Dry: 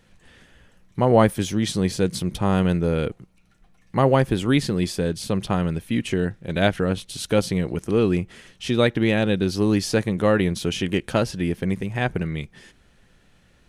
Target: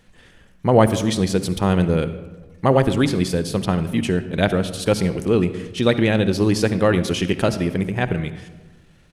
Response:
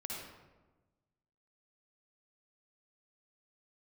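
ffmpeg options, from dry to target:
-filter_complex "[0:a]bandreject=f=70.98:t=h:w=4,bandreject=f=141.96:t=h:w=4,bandreject=f=212.94:t=h:w=4,bandreject=f=283.92:t=h:w=4,atempo=1.5,asplit=2[a][b];[1:a]atrim=start_sample=2205[c];[b][c]afir=irnorm=-1:irlink=0,volume=-8.5dB[d];[a][d]amix=inputs=2:normalize=0,volume=1dB"

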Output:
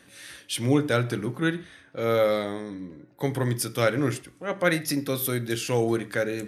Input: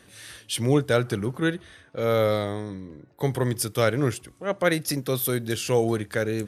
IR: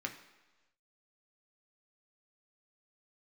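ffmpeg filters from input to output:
-filter_complex "[0:a]asplit=2[a][b];[1:a]atrim=start_sample=2205,atrim=end_sample=6174[c];[b][c]afir=irnorm=-1:irlink=0,volume=-1dB[d];[a][d]amix=inputs=2:normalize=0,volume=-5.5dB"

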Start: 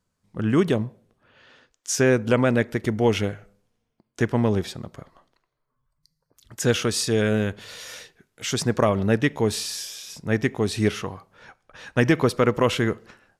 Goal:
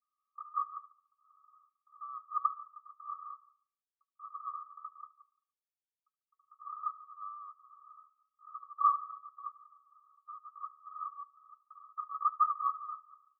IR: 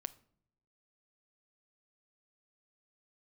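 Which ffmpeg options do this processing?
-filter_complex "[0:a]acontrast=55,asettb=1/sr,asplit=3[a][b][c];[a]atrim=end=3.004[d];[b]atrim=start=3:end=6.73,asetpts=PTS-STARTPTS,afade=t=in:d=0.004:c=qsin,afade=t=out:st=3.726:d=0.004:c=qsin,acrusher=bits=5:dc=4:mix=0:aa=0.000001[e];[c]atrim=start=6.726[f];[d][e]acrossfade=d=0.004:c1=hsin:c2=qsin[g];[g][f]acrossfade=d=0.004:c1=qsin:c2=hsin,asuperpass=centerf=1200:order=20:qfactor=7.5,aecho=1:1:72|144|216|288:0.0944|0.0538|0.0307|0.0175"

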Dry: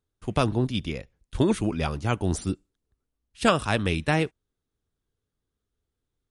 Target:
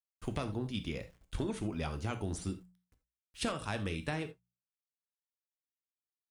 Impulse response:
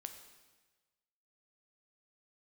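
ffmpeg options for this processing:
-filter_complex "[0:a]acontrast=70,acrusher=bits=9:mix=0:aa=0.000001,bandreject=f=60:t=h:w=6,bandreject=f=120:t=h:w=6,bandreject=f=180:t=h:w=6,acompressor=threshold=-26dB:ratio=6[a];[1:a]atrim=start_sample=2205,atrim=end_sample=3969[b];[a][b]afir=irnorm=-1:irlink=0,volume=-2.5dB"

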